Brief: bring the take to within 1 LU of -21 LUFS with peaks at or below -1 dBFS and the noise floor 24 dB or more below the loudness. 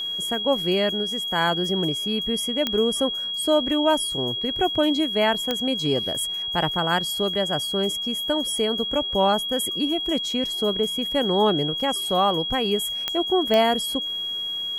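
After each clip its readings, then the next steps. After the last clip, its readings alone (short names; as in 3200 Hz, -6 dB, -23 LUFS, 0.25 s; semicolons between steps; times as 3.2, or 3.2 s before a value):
clicks 4; steady tone 3300 Hz; tone level -26 dBFS; loudness -22.5 LUFS; peak -7.5 dBFS; loudness target -21.0 LUFS
-> de-click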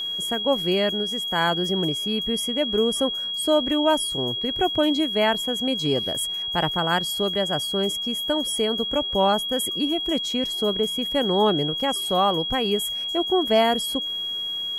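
clicks 0; steady tone 3300 Hz; tone level -26 dBFS
-> notch 3300 Hz, Q 30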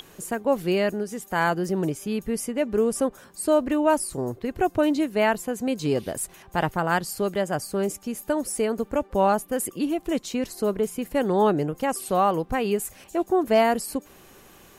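steady tone none; loudness -25.0 LUFS; peak -8.5 dBFS; loudness target -21.0 LUFS
-> gain +4 dB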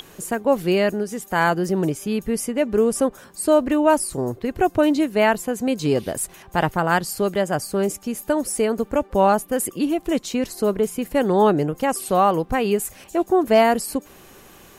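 loudness -21.0 LUFS; peak -4.5 dBFS; noise floor -48 dBFS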